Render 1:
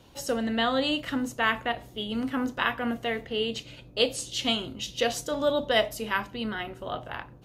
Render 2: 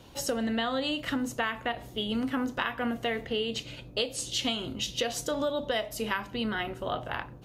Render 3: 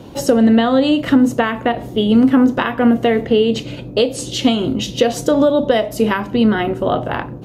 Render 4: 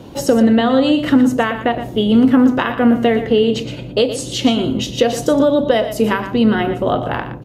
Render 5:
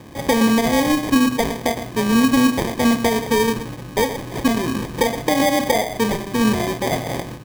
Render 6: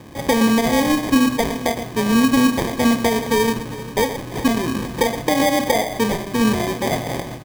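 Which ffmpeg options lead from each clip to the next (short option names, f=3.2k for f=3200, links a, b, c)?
-af "acompressor=threshold=-29dB:ratio=12,volume=3dB"
-af "equalizer=f=270:w=0.34:g=13,volume=6.5dB"
-af "aecho=1:1:118:0.282"
-af "acrusher=samples=32:mix=1:aa=0.000001,volume=-4dB"
-af "aecho=1:1:398:0.15"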